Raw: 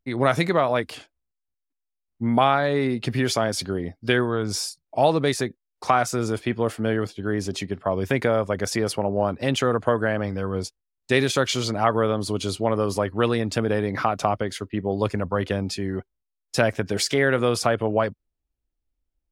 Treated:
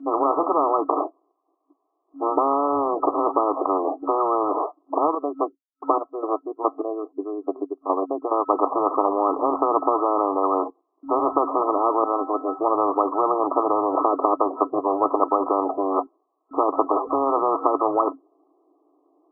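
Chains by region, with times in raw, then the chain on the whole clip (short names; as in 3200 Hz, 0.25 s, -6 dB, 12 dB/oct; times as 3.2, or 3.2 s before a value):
4.98–8.49 chopper 2.4 Hz, depth 60%, duty 40% + upward expander 2.5:1, over -41 dBFS
12.04–12.61 level-crossing sampler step -45.5 dBFS + resonator 260 Hz, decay 0.27 s, harmonics odd, mix 90%
whole clip: FFT band-pass 270–1300 Hz; comb 2.8 ms, depth 61%; spectral compressor 10:1; gain +3 dB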